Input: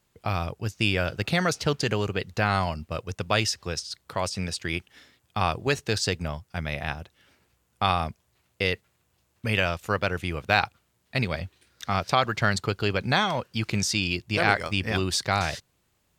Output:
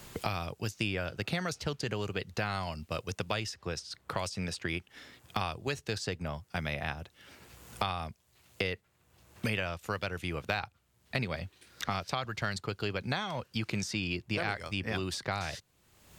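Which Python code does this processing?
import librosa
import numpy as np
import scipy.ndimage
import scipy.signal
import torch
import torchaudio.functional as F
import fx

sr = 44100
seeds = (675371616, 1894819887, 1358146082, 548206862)

y = fx.band_squash(x, sr, depth_pct=100)
y = y * 10.0 ** (-9.0 / 20.0)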